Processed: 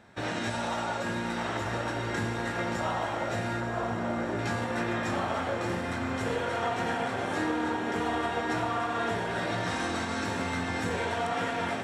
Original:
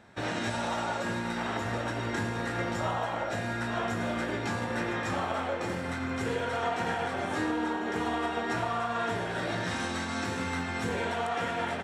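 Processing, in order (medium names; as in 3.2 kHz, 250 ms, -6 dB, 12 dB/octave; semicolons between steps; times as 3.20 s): 3.60–4.39 s: low-pass 1.3 kHz 12 dB/octave; echo that smears into a reverb 1002 ms, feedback 65%, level -8.5 dB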